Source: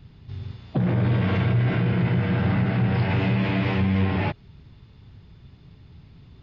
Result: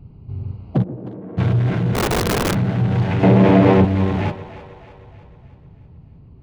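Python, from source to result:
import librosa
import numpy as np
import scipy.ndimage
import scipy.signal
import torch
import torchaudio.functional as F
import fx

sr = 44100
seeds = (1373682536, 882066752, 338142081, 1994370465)

p1 = fx.wiener(x, sr, points=25)
p2 = fx.ladder_bandpass(p1, sr, hz=380.0, resonance_pct=30, at=(0.82, 1.37), fade=0.02)
p3 = fx.rider(p2, sr, range_db=4, speed_s=0.5)
p4 = p2 + (p3 * librosa.db_to_amplitude(0.0))
p5 = fx.peak_eq(p4, sr, hz=470.0, db=14.0, octaves=2.8, at=(3.23, 3.85))
p6 = p5 + fx.echo_split(p5, sr, split_hz=400.0, low_ms=138, high_ms=311, feedback_pct=52, wet_db=-14, dry=0)
p7 = fx.overflow_wrap(p6, sr, gain_db=12.0, at=(1.94, 2.53), fade=0.02)
y = p7 * librosa.db_to_amplitude(-2.0)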